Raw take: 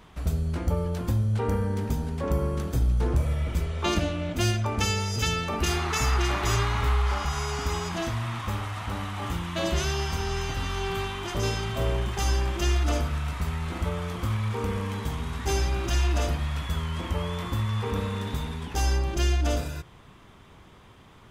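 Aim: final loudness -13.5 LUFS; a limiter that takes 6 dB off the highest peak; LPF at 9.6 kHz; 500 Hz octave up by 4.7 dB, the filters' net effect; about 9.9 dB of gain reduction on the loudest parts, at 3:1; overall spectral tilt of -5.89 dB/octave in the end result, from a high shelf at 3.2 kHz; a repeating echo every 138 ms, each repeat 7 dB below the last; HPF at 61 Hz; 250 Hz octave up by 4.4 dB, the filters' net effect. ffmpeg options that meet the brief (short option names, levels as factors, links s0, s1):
-af "highpass=61,lowpass=9600,equalizer=f=250:t=o:g=5,equalizer=f=500:t=o:g=4.5,highshelf=f=3200:g=-4.5,acompressor=threshold=0.0224:ratio=3,alimiter=level_in=1.26:limit=0.0631:level=0:latency=1,volume=0.794,aecho=1:1:138|276|414|552|690:0.447|0.201|0.0905|0.0407|0.0183,volume=11.2"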